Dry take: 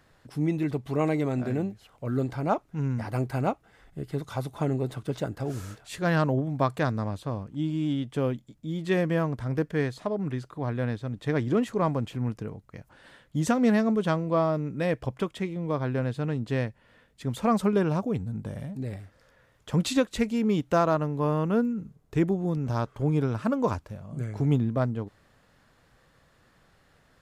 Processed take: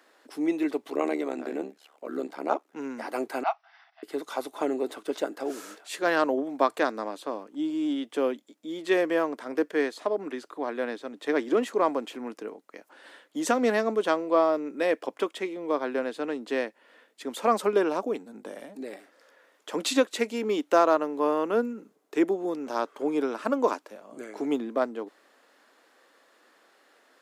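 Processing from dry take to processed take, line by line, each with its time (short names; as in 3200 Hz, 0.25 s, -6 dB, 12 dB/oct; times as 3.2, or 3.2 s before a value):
0.9–2.76 AM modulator 72 Hz, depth 75%
3.43–4.03 brick-wall FIR band-pass 630–6000 Hz
7.49–7.96 bell 2400 Hz -4 dB 1.4 oct
whole clip: steep high-pass 280 Hz 36 dB/oct; gain +3 dB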